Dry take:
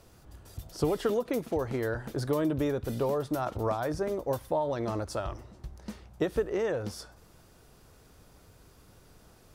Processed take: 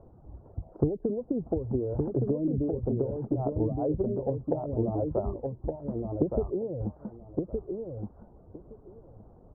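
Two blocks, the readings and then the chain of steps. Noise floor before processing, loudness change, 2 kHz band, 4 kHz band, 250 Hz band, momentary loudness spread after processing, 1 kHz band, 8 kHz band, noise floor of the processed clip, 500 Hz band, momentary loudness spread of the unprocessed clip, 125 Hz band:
-58 dBFS, 0.0 dB, under -25 dB, under -35 dB, +3.5 dB, 15 LU, -6.0 dB, under -30 dB, -55 dBFS, 0.0 dB, 16 LU, +5.0 dB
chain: inverse Chebyshev low-pass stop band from 2900 Hz, stop band 60 dB; treble ducked by the level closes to 300 Hz, closed at -26.5 dBFS; reverb removal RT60 0.78 s; on a send: feedback echo 1.167 s, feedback 16%, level -4 dB; on the sum: gain +5 dB

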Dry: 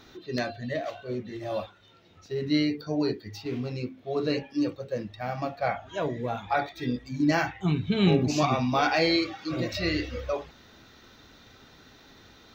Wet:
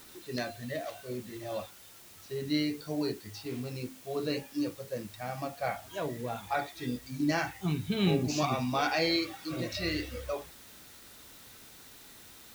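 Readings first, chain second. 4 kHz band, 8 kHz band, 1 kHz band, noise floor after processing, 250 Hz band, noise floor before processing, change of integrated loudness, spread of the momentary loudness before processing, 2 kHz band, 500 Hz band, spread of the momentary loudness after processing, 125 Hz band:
-3.0 dB, +1.0 dB, -5.5 dB, -53 dBFS, -5.5 dB, -55 dBFS, -5.0 dB, 11 LU, -4.5 dB, -5.5 dB, 21 LU, -5.5 dB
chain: Bessel low-pass 12000 Hz; high shelf 5600 Hz +8 dB; requantised 8-bit, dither triangular; gain -5.5 dB

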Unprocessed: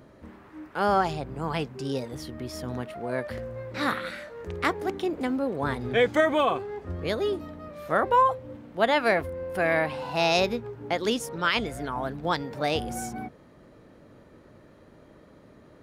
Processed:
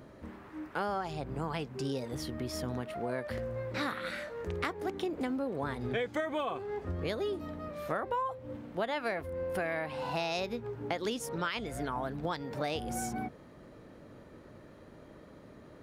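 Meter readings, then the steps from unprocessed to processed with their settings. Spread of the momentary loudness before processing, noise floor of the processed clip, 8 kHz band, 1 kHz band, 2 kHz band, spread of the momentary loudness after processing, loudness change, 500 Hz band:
14 LU, -54 dBFS, -4.0 dB, -10.0 dB, -9.5 dB, 19 LU, -8.5 dB, -8.0 dB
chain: compressor 6:1, threshold -31 dBFS, peak gain reduction 14.5 dB

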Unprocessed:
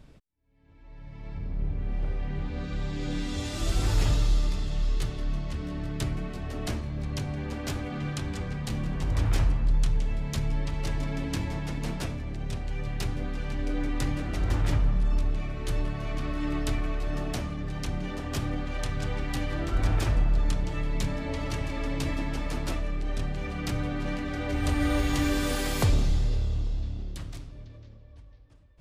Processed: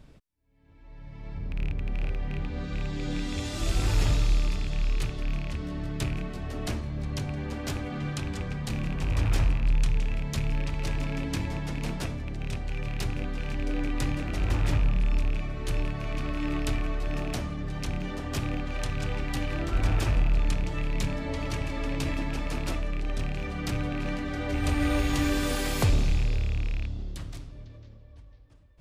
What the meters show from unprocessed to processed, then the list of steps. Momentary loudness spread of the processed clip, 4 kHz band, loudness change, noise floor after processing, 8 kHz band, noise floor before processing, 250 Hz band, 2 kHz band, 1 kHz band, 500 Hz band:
8 LU, +0.5 dB, 0.0 dB, -49 dBFS, 0.0 dB, -49 dBFS, 0.0 dB, +1.5 dB, 0.0 dB, 0.0 dB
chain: rattling part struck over -26 dBFS, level -28 dBFS

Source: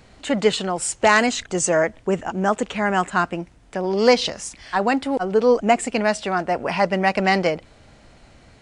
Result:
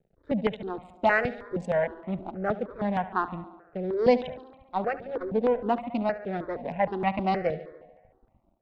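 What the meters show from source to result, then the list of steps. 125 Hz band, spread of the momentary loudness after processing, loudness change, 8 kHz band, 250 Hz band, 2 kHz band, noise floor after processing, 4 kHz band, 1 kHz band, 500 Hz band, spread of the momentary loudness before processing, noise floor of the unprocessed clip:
-6.0 dB, 12 LU, -8.0 dB, under -35 dB, -7.0 dB, -10.0 dB, -68 dBFS, -18.5 dB, -7.5 dB, -7.0 dB, 9 LU, -51 dBFS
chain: Wiener smoothing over 41 samples; bell 3700 Hz +7 dB 0.27 oct; crossover distortion -48.5 dBFS; air absorption 370 m; tape echo 71 ms, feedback 73%, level -14 dB, low-pass 4300 Hz; step phaser 6.4 Hz 280–1600 Hz; gain -2 dB

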